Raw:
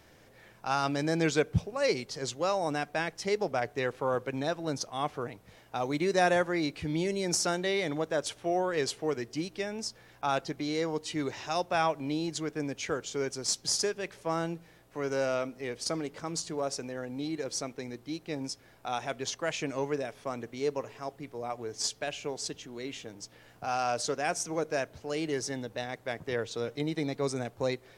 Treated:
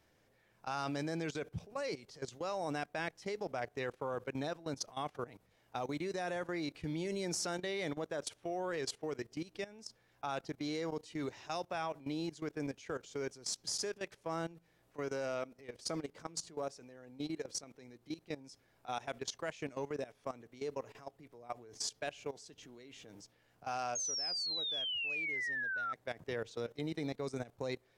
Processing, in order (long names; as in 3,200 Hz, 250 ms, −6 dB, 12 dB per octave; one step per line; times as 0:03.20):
sound drawn into the spectrogram fall, 0:23.95–0:25.93, 1,300–6,600 Hz −19 dBFS
output level in coarse steps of 17 dB
level −3.5 dB